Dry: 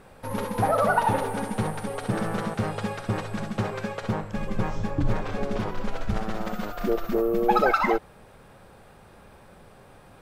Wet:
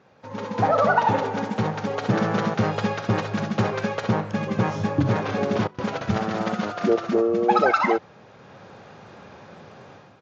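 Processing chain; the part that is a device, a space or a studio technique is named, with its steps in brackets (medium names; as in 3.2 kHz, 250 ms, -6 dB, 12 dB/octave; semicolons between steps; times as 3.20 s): 5.67–6.31 s: gate with hold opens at -17 dBFS; Bluetooth headset (high-pass 100 Hz 24 dB/octave; level rider gain up to 13 dB; resampled via 16 kHz; trim -6 dB; SBC 64 kbps 16 kHz)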